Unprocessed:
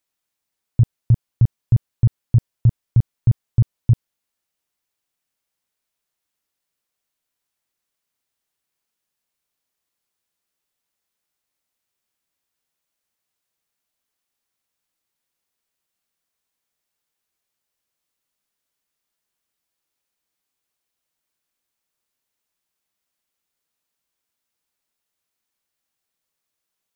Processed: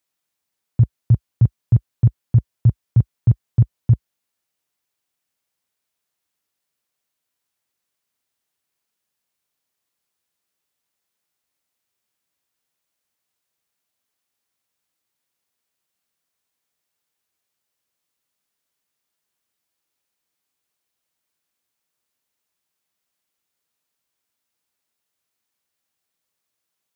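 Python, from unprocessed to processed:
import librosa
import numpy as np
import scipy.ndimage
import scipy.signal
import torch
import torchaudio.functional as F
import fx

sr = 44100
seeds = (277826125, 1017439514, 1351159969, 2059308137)

y = scipy.signal.sosfilt(scipy.signal.butter(4, 58.0, 'highpass', fs=sr, output='sos'), x)
y = y * librosa.db_to_amplitude(1.0)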